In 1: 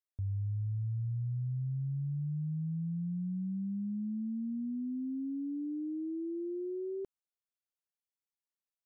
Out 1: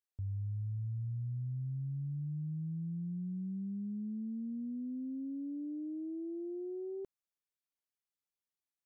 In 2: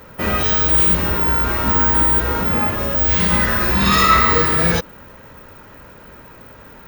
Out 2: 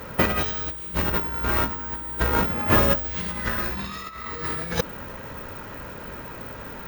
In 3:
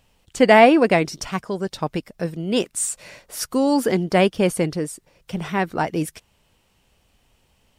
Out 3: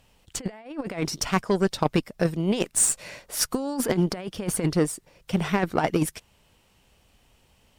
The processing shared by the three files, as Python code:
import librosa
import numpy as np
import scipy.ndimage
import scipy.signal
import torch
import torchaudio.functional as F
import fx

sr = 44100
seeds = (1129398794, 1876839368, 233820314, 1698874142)

y = fx.over_compress(x, sr, threshold_db=-22.0, ratio=-0.5)
y = fx.cheby_harmonics(y, sr, harmonics=(7, 8), levels_db=(-27, -30), full_scale_db=-5.5)